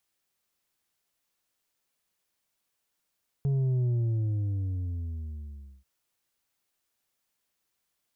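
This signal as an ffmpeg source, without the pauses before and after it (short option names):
-f lavfi -i "aevalsrc='0.0631*clip((2.39-t)/1.99,0,1)*tanh(1.78*sin(2*PI*140*2.39/log(65/140)*(exp(log(65/140)*t/2.39)-1)))/tanh(1.78)':d=2.39:s=44100"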